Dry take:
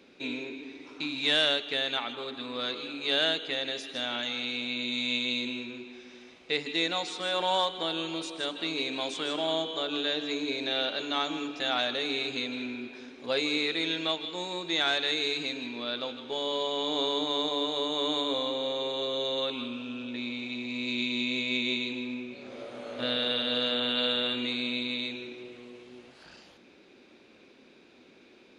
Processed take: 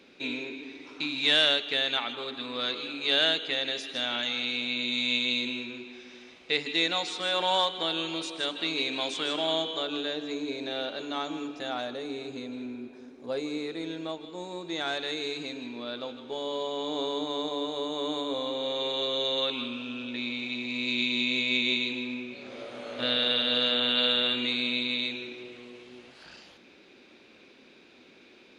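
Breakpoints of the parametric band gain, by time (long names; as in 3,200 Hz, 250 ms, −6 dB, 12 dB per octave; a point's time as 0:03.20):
parametric band 3,000 Hz 2.4 octaves
0:09.68 +3 dB
0:10.19 −6.5 dB
0:11.51 −6.5 dB
0:12.03 −14 dB
0:14.26 −14 dB
0:14.98 −6 dB
0:18.30 −6 dB
0:18.87 +4 dB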